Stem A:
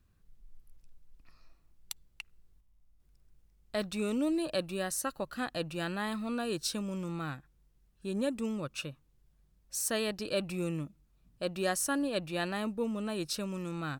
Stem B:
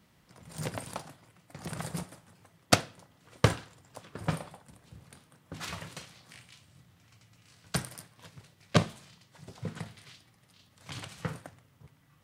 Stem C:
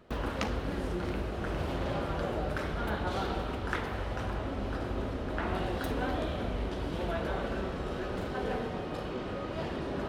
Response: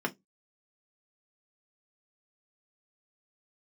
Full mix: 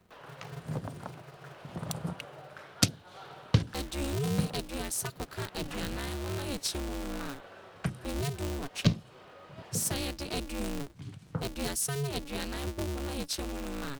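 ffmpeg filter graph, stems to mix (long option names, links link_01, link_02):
-filter_complex "[0:a]aeval=exprs='val(0)*sgn(sin(2*PI*140*n/s))':channel_layout=same,volume=2dB[link_01];[1:a]afwtdn=0.01,adelay=100,volume=1.5dB[link_02];[2:a]highpass=590,volume=-10.5dB[link_03];[link_01][link_02][link_03]amix=inputs=3:normalize=0,acrossover=split=320|3000[link_04][link_05][link_06];[link_05]acompressor=threshold=-39dB:ratio=6[link_07];[link_04][link_07][link_06]amix=inputs=3:normalize=0"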